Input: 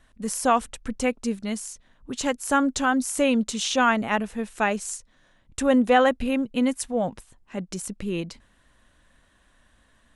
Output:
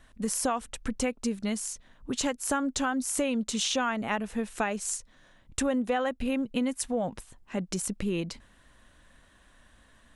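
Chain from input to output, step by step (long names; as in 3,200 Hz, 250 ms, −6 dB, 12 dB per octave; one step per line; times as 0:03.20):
downward compressor 5 to 1, threshold −28 dBFS, peak gain reduction 13.5 dB
level +2 dB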